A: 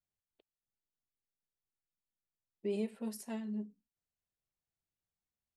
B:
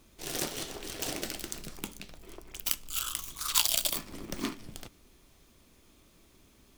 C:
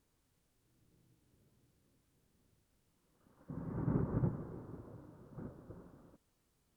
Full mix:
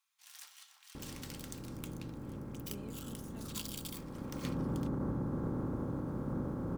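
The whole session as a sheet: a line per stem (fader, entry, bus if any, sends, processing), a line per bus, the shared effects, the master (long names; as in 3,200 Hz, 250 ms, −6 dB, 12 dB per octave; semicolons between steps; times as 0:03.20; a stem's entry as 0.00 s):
−12.5 dB, 0.05 s, no send, no processing
0:00.69 −18 dB → 0:01.40 −10 dB → 0:02.21 −10 dB → 0:02.86 −18 dB → 0:03.76 −18 dB → 0:04.30 −9.5 dB, 0.00 s, no send, Butterworth high-pass 930 Hz 36 dB per octave
+3.0 dB, 0.95 s, no send, compressor on every frequency bin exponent 0.4; brickwall limiter −31 dBFS, peak gain reduction 10.5 dB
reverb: not used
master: comb filter 3.7 ms, depth 32%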